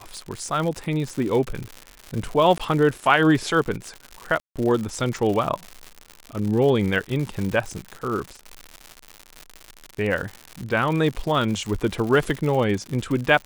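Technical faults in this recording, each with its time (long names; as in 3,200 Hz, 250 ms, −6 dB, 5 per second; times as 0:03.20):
surface crackle 140 per second −27 dBFS
0:02.58–0:02.60: drop-out 16 ms
0:04.40–0:04.56: drop-out 157 ms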